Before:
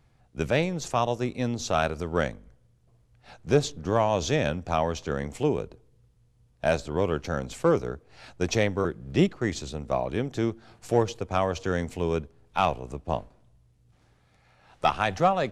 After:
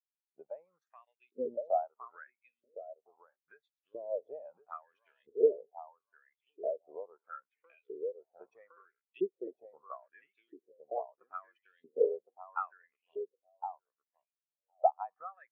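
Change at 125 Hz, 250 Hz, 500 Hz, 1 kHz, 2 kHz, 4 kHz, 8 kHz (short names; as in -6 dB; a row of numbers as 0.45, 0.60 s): under -40 dB, -21.5 dB, -9.0 dB, -11.0 dB, -24.0 dB, under -35 dB, under -40 dB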